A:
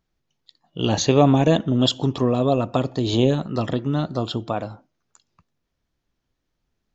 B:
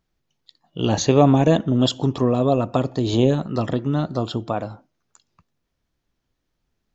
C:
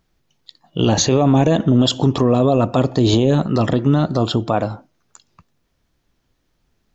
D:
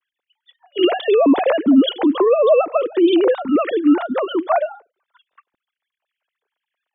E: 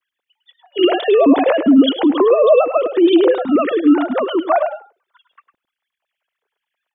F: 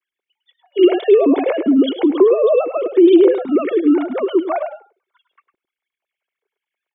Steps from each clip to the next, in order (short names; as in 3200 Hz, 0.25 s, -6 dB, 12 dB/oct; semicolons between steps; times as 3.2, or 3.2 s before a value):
dynamic EQ 3400 Hz, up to -4 dB, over -42 dBFS, Q 1.1; gain +1 dB
limiter -13.5 dBFS, peak gain reduction 12 dB; gain +8.5 dB
sine-wave speech
echo 0.104 s -10 dB; gain +2 dB
small resonant body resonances 380/2200 Hz, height 12 dB, ringing for 25 ms; gain -7.5 dB